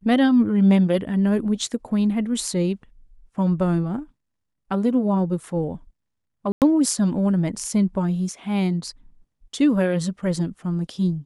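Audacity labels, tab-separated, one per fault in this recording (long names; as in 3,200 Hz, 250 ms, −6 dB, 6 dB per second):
6.520000	6.620000	drop-out 98 ms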